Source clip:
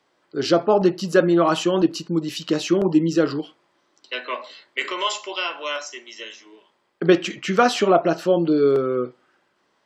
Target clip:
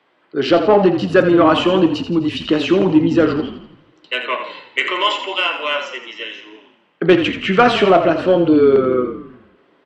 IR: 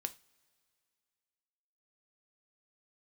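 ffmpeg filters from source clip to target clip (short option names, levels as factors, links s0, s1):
-filter_complex "[0:a]highpass=130,highshelf=f=4200:t=q:w=1.5:g=-12,acontrast=55,asplit=7[s0][s1][s2][s3][s4][s5][s6];[s1]adelay=84,afreqshift=-31,volume=0.335[s7];[s2]adelay=168,afreqshift=-62,volume=0.168[s8];[s3]adelay=252,afreqshift=-93,volume=0.0841[s9];[s4]adelay=336,afreqshift=-124,volume=0.0417[s10];[s5]adelay=420,afreqshift=-155,volume=0.0209[s11];[s6]adelay=504,afreqshift=-186,volume=0.0105[s12];[s0][s7][s8][s9][s10][s11][s12]amix=inputs=7:normalize=0,asplit=2[s13][s14];[1:a]atrim=start_sample=2205,asetrate=26019,aresample=44100[s15];[s14][s15]afir=irnorm=-1:irlink=0,volume=0.398[s16];[s13][s16]amix=inputs=2:normalize=0,aresample=22050,aresample=44100,volume=0.668"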